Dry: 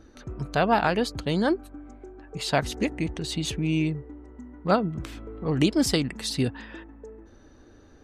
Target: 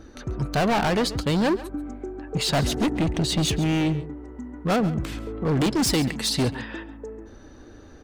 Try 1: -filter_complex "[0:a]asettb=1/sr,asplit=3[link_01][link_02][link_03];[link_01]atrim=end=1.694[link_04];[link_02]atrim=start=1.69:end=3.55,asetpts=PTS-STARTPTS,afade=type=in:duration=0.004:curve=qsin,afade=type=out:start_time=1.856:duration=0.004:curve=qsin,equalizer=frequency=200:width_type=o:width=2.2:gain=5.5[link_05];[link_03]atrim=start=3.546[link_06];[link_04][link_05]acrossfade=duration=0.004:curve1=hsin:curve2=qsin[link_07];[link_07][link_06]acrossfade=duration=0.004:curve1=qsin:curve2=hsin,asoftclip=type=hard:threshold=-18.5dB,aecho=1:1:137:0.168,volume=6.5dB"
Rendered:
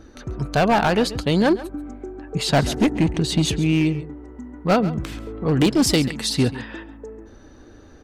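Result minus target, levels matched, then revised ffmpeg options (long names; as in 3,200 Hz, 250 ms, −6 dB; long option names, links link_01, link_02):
hard clipping: distortion −6 dB
-filter_complex "[0:a]asettb=1/sr,asplit=3[link_01][link_02][link_03];[link_01]atrim=end=1.694[link_04];[link_02]atrim=start=1.69:end=3.55,asetpts=PTS-STARTPTS,afade=type=in:duration=0.004:curve=qsin,afade=type=out:start_time=1.856:duration=0.004:curve=qsin,equalizer=frequency=200:width_type=o:width=2.2:gain=5.5[link_05];[link_03]atrim=start=3.546[link_06];[link_04][link_05]acrossfade=duration=0.004:curve1=hsin:curve2=qsin[link_07];[link_07][link_06]acrossfade=duration=0.004:curve1=qsin:curve2=hsin,asoftclip=type=hard:threshold=-25.5dB,aecho=1:1:137:0.168,volume=6.5dB"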